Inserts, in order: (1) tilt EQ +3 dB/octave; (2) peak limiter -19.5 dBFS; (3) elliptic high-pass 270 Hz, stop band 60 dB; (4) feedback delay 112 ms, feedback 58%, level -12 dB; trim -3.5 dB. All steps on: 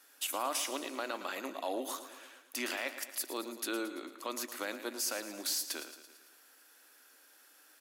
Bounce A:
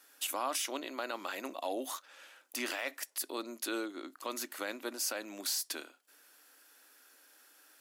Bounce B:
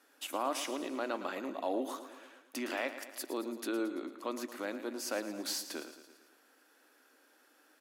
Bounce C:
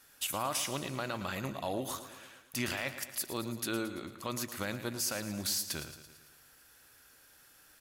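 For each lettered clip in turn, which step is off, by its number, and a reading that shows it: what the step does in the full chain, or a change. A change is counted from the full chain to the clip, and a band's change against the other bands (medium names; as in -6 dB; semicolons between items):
4, echo-to-direct -10.0 dB to none; 1, 8 kHz band -6.5 dB; 3, 250 Hz band +3.0 dB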